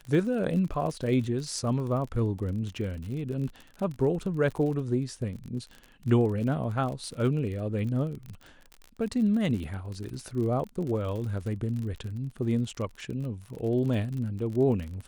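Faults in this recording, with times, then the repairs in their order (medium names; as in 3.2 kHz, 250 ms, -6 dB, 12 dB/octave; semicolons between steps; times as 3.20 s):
crackle 42 per s -35 dBFS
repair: de-click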